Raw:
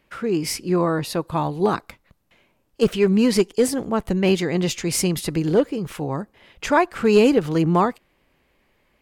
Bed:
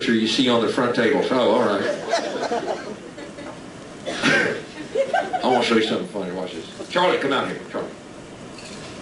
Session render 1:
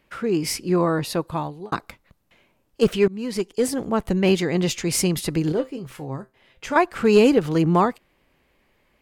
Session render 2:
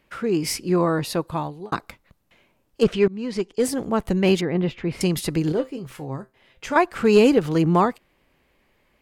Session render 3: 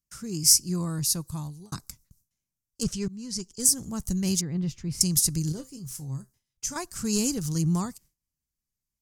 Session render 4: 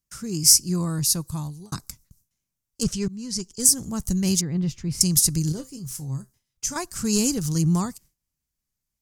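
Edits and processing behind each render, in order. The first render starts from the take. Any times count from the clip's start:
1.21–1.72 s: fade out; 3.08–3.88 s: fade in, from -22 dB; 5.52–6.76 s: feedback comb 130 Hz, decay 0.2 s, mix 70%
2.83–3.60 s: distance through air 72 m; 4.41–5.01 s: distance through air 470 m
gate with hold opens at -44 dBFS; FFT filter 140 Hz 0 dB, 470 Hz -21 dB, 720 Hz -20 dB, 1.1 kHz -16 dB, 2.4 kHz -17 dB, 3.6 kHz -10 dB, 5.8 kHz +13 dB, 13 kHz +10 dB
trim +4 dB; peak limiter -1 dBFS, peak gain reduction 1.5 dB

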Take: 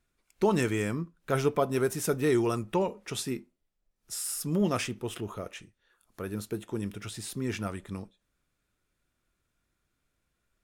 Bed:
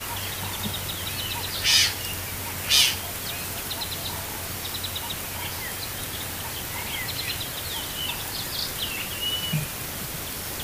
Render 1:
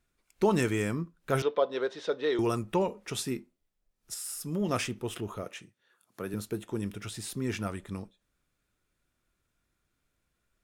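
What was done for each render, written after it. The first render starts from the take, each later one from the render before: 1.42–2.39 s: cabinet simulation 490–4200 Hz, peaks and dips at 520 Hz +8 dB, 740 Hz -4 dB, 1.3 kHz -4 dB, 2.4 kHz -7 dB, 3.7 kHz +9 dB; 4.14–4.69 s: feedback comb 430 Hz, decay 0.46 s, mix 40%; 5.43–6.34 s: high-pass 110 Hz 24 dB/octave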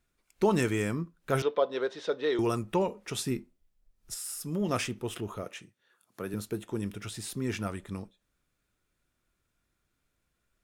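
3.26–4.24 s: bass shelf 110 Hz +11.5 dB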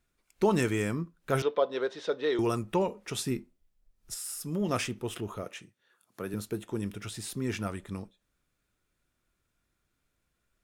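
no audible change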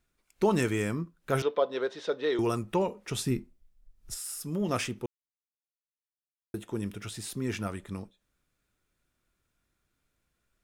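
3.09–4.21 s: bass shelf 130 Hz +9.5 dB; 5.06–6.54 s: mute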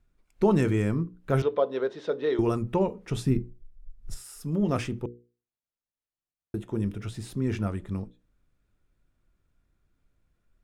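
tilt EQ -2.5 dB/octave; hum notches 60/120/180/240/300/360/420/480 Hz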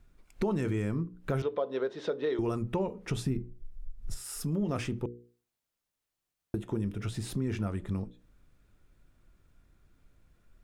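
in parallel at +3 dB: peak limiter -17.5 dBFS, peak gain reduction 7 dB; on the sum: compression 2.5:1, threshold -34 dBFS, peak gain reduction 14.5 dB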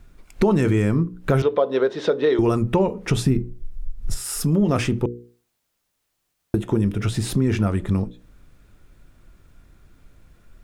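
trim +12 dB

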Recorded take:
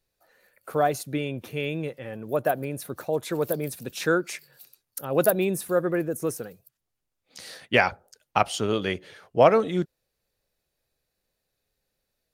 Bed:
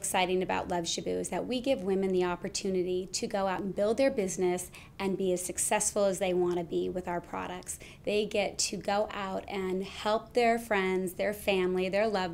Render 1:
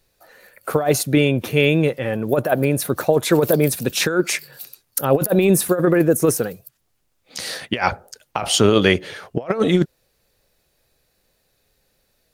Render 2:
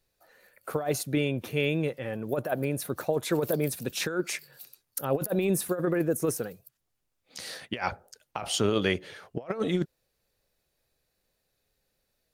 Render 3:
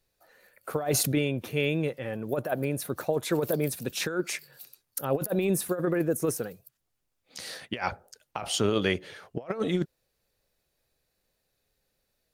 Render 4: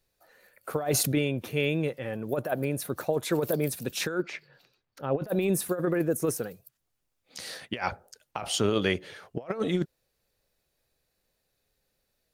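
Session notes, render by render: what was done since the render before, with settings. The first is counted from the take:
compressor with a negative ratio -25 dBFS, ratio -0.5; loudness maximiser +10.5 dB
trim -11 dB
0.79–1.19 s: decay stretcher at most 20 dB/s
4.22–5.27 s: distance through air 230 m

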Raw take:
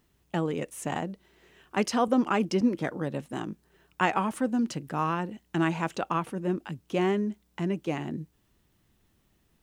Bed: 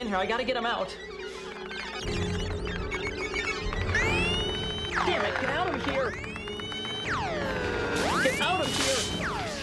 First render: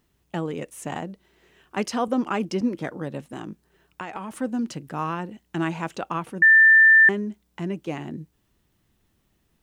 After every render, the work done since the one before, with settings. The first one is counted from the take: 3.25–4.32 s: compression, threshold -29 dBFS; 6.42–7.09 s: bleep 1.78 kHz -10 dBFS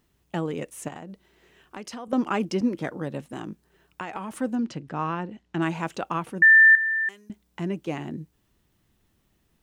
0.88–2.13 s: compression 5:1, threshold -35 dBFS; 4.55–5.62 s: distance through air 99 m; 6.75–7.30 s: pre-emphasis filter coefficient 0.97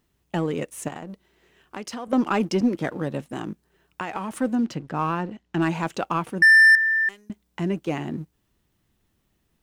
waveshaping leveller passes 1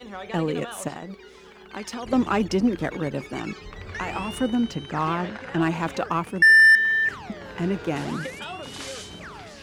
add bed -9 dB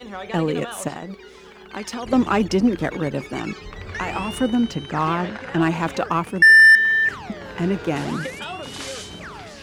trim +3.5 dB

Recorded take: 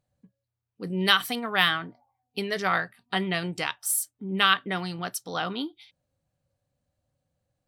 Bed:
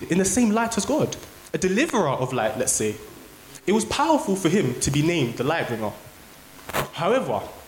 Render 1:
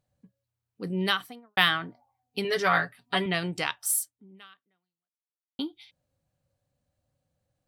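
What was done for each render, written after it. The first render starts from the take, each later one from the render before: 0.85–1.57 s: studio fade out; 2.44–3.26 s: comb 7.1 ms, depth 80%; 3.97–5.59 s: fade out exponential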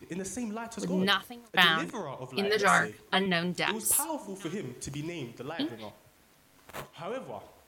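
add bed -16 dB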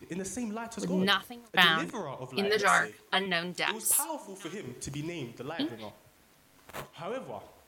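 2.61–4.67 s: bass shelf 300 Hz -9.5 dB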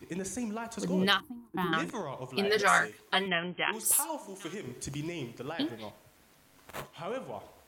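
1.20–1.73 s: FFT filter 210 Hz 0 dB, 320 Hz +11 dB, 550 Hz -28 dB, 890 Hz -1 dB, 2 kHz -21 dB, 6.4 kHz -25 dB, 11 kHz -9 dB; 3.28–3.73 s: brick-wall FIR low-pass 3.3 kHz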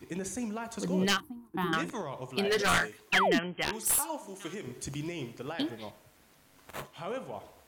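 one-sided wavefolder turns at -21.5 dBFS; 3.12–3.39 s: painted sound fall 200–2900 Hz -26 dBFS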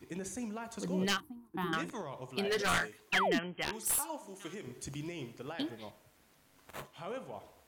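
trim -4.5 dB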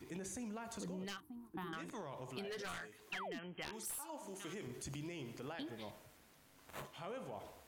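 transient shaper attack -5 dB, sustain +3 dB; compression 16:1, threshold -42 dBFS, peak gain reduction 16.5 dB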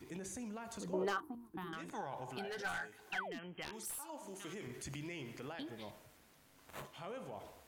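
0.93–1.35 s: high-order bell 680 Hz +14.5 dB 2.7 oct; 1.90–3.22 s: small resonant body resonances 810/1500 Hz, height 16 dB; 4.61–5.47 s: peaking EQ 2 kHz +6.5 dB 0.81 oct

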